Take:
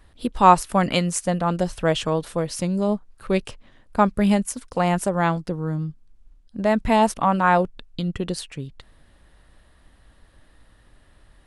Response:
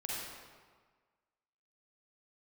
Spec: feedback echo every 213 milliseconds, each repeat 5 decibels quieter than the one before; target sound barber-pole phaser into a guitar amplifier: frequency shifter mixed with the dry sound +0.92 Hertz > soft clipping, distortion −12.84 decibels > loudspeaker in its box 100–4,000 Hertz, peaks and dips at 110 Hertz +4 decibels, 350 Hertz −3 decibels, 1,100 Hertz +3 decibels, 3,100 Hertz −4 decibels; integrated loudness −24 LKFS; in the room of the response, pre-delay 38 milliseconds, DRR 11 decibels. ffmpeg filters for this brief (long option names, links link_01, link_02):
-filter_complex "[0:a]aecho=1:1:213|426|639|852|1065|1278|1491:0.562|0.315|0.176|0.0988|0.0553|0.031|0.0173,asplit=2[link_01][link_02];[1:a]atrim=start_sample=2205,adelay=38[link_03];[link_02][link_03]afir=irnorm=-1:irlink=0,volume=-13.5dB[link_04];[link_01][link_04]amix=inputs=2:normalize=0,asplit=2[link_05][link_06];[link_06]afreqshift=0.92[link_07];[link_05][link_07]amix=inputs=2:normalize=1,asoftclip=threshold=-11.5dB,highpass=100,equalizer=frequency=110:width_type=q:width=4:gain=4,equalizer=frequency=350:width_type=q:width=4:gain=-3,equalizer=frequency=1100:width_type=q:width=4:gain=3,equalizer=frequency=3100:width_type=q:width=4:gain=-4,lowpass=frequency=4000:width=0.5412,lowpass=frequency=4000:width=1.3066,volume=0.5dB"